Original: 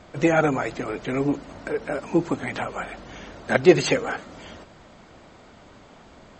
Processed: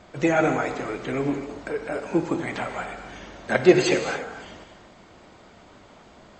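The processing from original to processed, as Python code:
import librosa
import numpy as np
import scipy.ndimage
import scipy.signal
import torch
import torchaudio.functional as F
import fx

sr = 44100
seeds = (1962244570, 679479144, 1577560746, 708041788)

y = fx.low_shelf(x, sr, hz=150.0, db=-3.0)
y = fx.rev_gated(y, sr, seeds[0], gate_ms=300, shape='flat', drr_db=5.5)
y = y * librosa.db_to_amplitude(-1.5)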